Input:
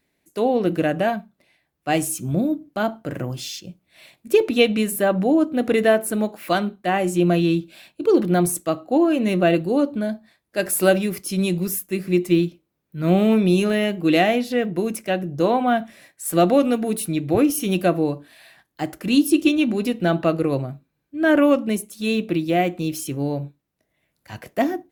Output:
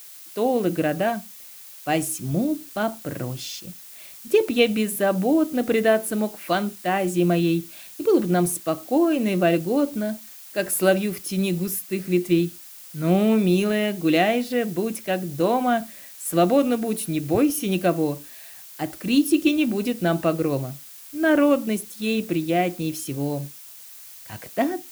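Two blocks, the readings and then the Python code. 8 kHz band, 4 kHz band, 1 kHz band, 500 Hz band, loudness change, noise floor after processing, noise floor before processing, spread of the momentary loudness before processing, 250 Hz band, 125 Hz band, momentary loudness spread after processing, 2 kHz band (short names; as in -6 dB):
-1.0 dB, -2.0 dB, -2.0 dB, -2.0 dB, -2.0 dB, -43 dBFS, -74 dBFS, 12 LU, -2.0 dB, -2.0 dB, 16 LU, -2.0 dB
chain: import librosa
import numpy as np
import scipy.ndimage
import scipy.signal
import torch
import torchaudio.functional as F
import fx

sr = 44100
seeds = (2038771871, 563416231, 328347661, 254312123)

y = fx.dmg_noise_colour(x, sr, seeds[0], colour='blue', level_db=-41.0)
y = F.gain(torch.from_numpy(y), -2.0).numpy()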